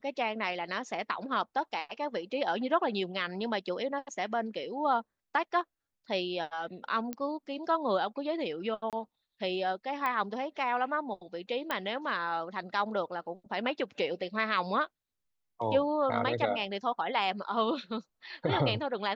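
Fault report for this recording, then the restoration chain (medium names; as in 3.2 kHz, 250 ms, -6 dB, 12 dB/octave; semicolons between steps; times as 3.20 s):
7.13 s: pop -21 dBFS
8.90–8.93 s: dropout 27 ms
10.06 s: pop -19 dBFS
11.71 s: pop -17 dBFS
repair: de-click; interpolate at 8.90 s, 27 ms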